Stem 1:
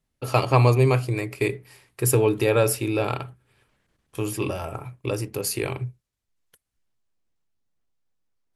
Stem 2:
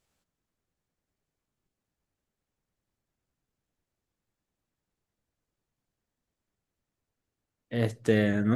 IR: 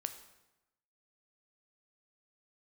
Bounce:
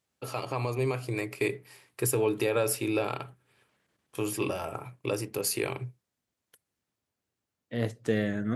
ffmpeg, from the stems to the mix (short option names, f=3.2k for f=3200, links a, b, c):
-filter_complex "[0:a]highpass=f=180:p=1,alimiter=limit=-14.5dB:level=0:latency=1:release=169,volume=-5dB[a];[1:a]volume=-4dB[b];[a][b]amix=inputs=2:normalize=0,highpass=78,dynaudnorm=f=300:g=7:m=3dB"